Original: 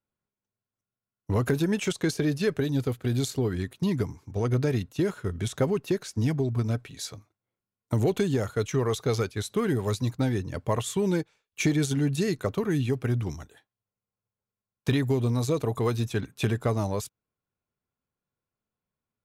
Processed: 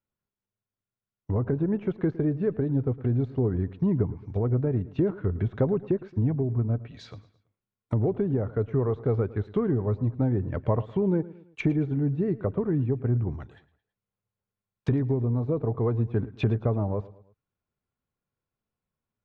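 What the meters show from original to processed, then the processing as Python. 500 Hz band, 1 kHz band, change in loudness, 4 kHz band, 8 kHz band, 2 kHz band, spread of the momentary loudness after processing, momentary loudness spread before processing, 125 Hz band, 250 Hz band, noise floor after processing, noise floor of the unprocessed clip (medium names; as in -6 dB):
0.0 dB, -3.5 dB, +0.5 dB, under -15 dB, under -25 dB, -9.0 dB, 4 LU, 6 LU, +1.5 dB, +0.5 dB, under -85 dBFS, under -85 dBFS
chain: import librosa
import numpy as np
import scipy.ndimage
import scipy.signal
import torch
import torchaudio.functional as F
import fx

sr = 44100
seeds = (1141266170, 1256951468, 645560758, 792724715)

y = fx.env_lowpass_down(x, sr, base_hz=880.0, full_db=-25.5)
y = scipy.signal.sosfilt(scipy.signal.butter(2, 3400.0, 'lowpass', fs=sr, output='sos'), y)
y = fx.low_shelf(y, sr, hz=89.0, db=5.5)
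y = fx.rider(y, sr, range_db=3, speed_s=0.5)
y = fx.echo_feedback(y, sr, ms=110, feedback_pct=43, wet_db=-18.5)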